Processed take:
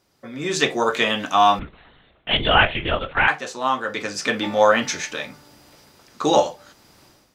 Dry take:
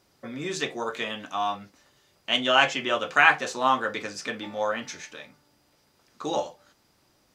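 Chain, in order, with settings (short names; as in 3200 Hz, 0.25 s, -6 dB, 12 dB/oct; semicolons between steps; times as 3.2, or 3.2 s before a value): 1.59–3.28 LPC vocoder at 8 kHz whisper; AGC gain up to 16 dB; gain -1 dB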